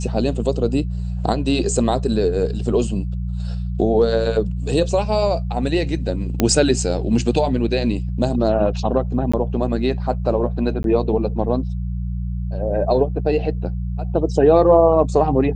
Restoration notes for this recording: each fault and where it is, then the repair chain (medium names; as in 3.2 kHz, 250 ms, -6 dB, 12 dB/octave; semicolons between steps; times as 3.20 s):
hum 60 Hz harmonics 3 -24 dBFS
6.40 s: pop -3 dBFS
9.32–9.34 s: dropout 15 ms
10.83–10.84 s: dropout 12 ms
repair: de-click; de-hum 60 Hz, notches 3; interpolate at 9.32 s, 15 ms; interpolate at 10.83 s, 12 ms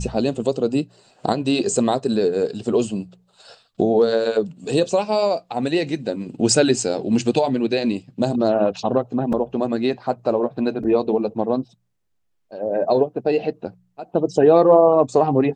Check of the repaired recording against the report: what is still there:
nothing left